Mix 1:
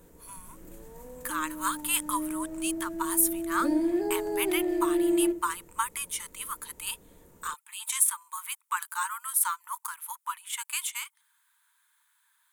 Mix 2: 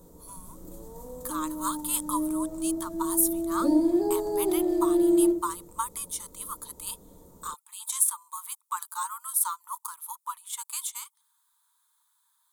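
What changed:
background: send +7.5 dB; master: add high-order bell 2.1 kHz -13.5 dB 1.2 oct

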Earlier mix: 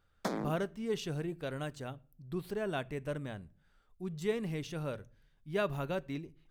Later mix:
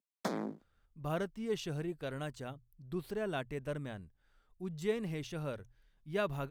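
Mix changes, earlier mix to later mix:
speech: entry +0.60 s; reverb: off

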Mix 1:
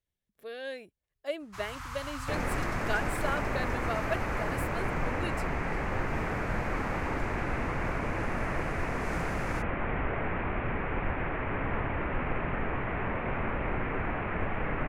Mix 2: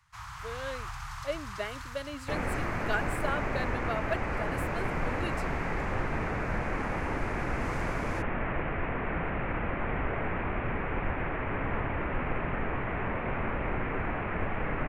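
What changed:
first sound: entry -1.40 s; master: add treble shelf 10 kHz -6 dB

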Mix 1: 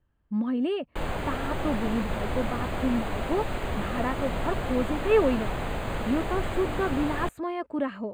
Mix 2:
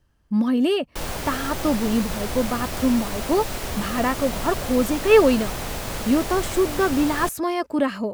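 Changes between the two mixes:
speech +7.0 dB; master: remove boxcar filter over 8 samples

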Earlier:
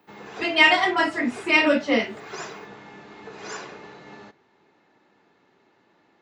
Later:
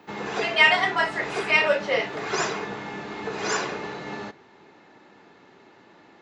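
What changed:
speech: add rippled Chebyshev high-pass 390 Hz, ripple 3 dB; background +9.5 dB

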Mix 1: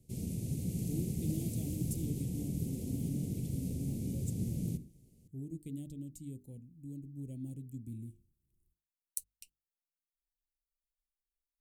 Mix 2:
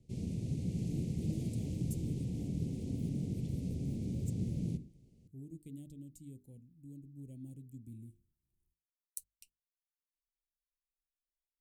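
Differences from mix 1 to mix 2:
speech -5.5 dB; background: add low-pass 4.9 kHz 12 dB/octave

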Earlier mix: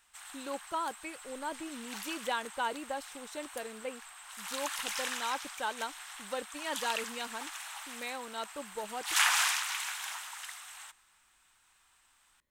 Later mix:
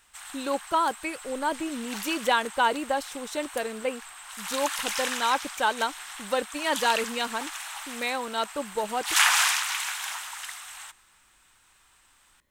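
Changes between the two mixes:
speech +10.5 dB; background +6.0 dB

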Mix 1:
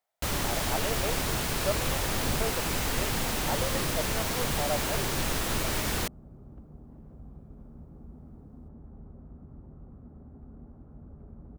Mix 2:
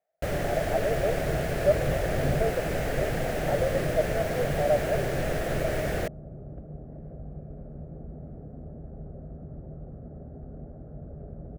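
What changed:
speech: add distance through air 350 m; second sound +5.0 dB; master: add FFT filter 100 Hz 0 dB, 150 Hz +6 dB, 230 Hz -3 dB, 650 Hz +11 dB, 970 Hz -11 dB, 1.7 kHz +2 dB, 2.4 kHz -4 dB, 3.8 kHz -11 dB

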